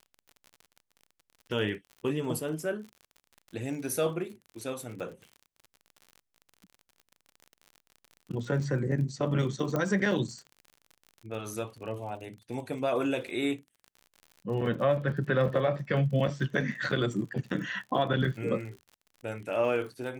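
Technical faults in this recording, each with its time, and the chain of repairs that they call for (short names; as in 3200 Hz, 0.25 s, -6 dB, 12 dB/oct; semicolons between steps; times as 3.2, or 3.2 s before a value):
crackle 49/s -40 dBFS
9.76 pop -17 dBFS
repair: de-click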